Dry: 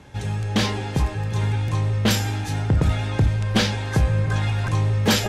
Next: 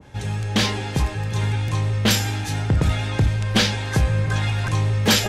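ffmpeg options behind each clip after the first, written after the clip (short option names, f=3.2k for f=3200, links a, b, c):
-af "adynamicequalizer=threshold=0.0112:dfrequency=1500:dqfactor=0.7:tfrequency=1500:tqfactor=0.7:attack=5:release=100:ratio=0.375:range=2:mode=boostabove:tftype=highshelf"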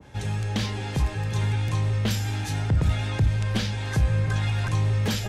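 -filter_complex "[0:a]acrossover=split=170[a][b];[b]acompressor=threshold=-29dB:ratio=3[c];[a][c]amix=inputs=2:normalize=0,volume=-2dB"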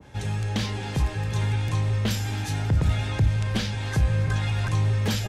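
-af "aecho=1:1:270|540|810|1080|1350:0.126|0.0692|0.0381|0.0209|0.0115"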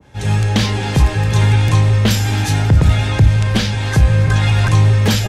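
-af "dynaudnorm=f=160:g=3:m=15dB"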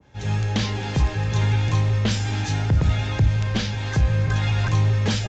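-af "aresample=16000,aresample=44100,volume=-8dB"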